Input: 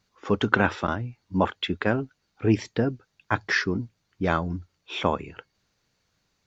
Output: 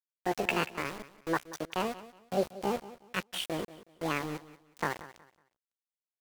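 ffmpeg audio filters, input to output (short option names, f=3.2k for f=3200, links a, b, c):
-filter_complex "[0:a]flanger=delay=6.4:depth=7.8:regen=-71:speed=1.4:shape=triangular,asetrate=74167,aresample=44100,atempo=0.594604,asplit=2[a][b];[b]adynamicsmooth=sensitivity=1:basefreq=1.9k,volume=-2.5dB[c];[a][c]amix=inputs=2:normalize=0,aeval=exprs='val(0)*gte(abs(val(0)),0.0422)':c=same,asplit=2[d][e];[e]aecho=0:1:192|384|576:0.15|0.0404|0.0109[f];[d][f]amix=inputs=2:normalize=0,asetrate=45938,aresample=44100,volume=-7.5dB"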